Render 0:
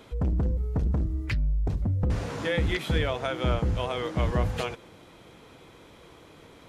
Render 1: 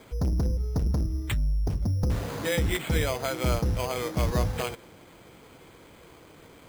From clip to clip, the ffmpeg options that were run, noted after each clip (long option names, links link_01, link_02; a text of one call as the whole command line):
ffmpeg -i in.wav -af "acrusher=samples=8:mix=1:aa=0.000001" out.wav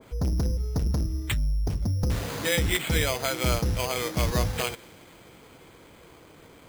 ffmpeg -i in.wav -af "adynamicequalizer=threshold=0.00562:dfrequency=1600:dqfactor=0.7:tfrequency=1600:tqfactor=0.7:attack=5:release=100:ratio=0.375:range=3:mode=boostabove:tftype=highshelf" out.wav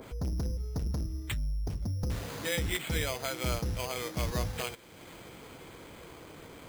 ffmpeg -i in.wav -af "acompressor=mode=upward:threshold=-31dB:ratio=2.5,volume=-7dB" out.wav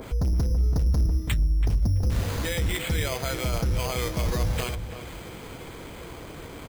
ffmpeg -i in.wav -filter_complex "[0:a]lowshelf=frequency=64:gain=10,alimiter=level_in=1.5dB:limit=-24dB:level=0:latency=1:release=12,volume=-1.5dB,asplit=2[link_01][link_02];[link_02]adelay=331,lowpass=frequency=1500:poles=1,volume=-8dB,asplit=2[link_03][link_04];[link_04]adelay=331,lowpass=frequency=1500:poles=1,volume=0.25,asplit=2[link_05][link_06];[link_06]adelay=331,lowpass=frequency=1500:poles=1,volume=0.25[link_07];[link_01][link_03][link_05][link_07]amix=inputs=4:normalize=0,volume=7dB" out.wav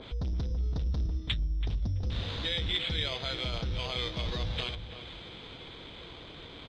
ffmpeg -i in.wav -af "lowpass=frequency=3600:width_type=q:width=6.6,volume=-8.5dB" out.wav